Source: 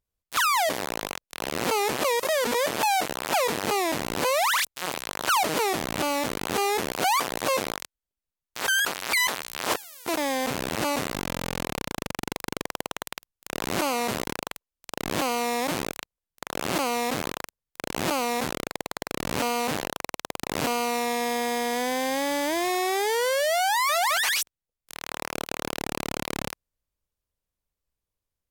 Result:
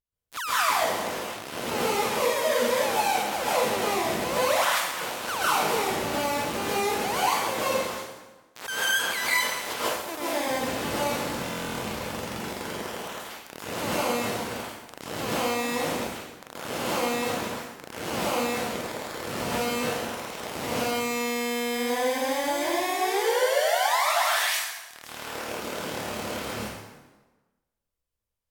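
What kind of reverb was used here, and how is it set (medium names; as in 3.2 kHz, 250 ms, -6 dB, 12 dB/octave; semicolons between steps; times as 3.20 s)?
plate-style reverb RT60 1.2 s, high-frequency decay 0.8×, pre-delay 120 ms, DRR -9.5 dB; trim -10 dB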